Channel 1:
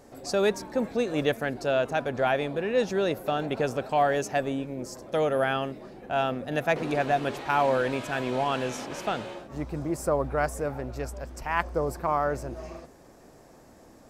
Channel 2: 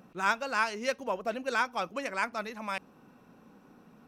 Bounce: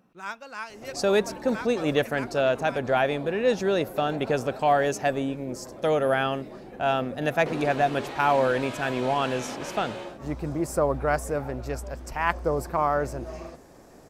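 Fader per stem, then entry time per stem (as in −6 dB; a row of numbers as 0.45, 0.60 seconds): +2.0, −8.0 decibels; 0.70, 0.00 seconds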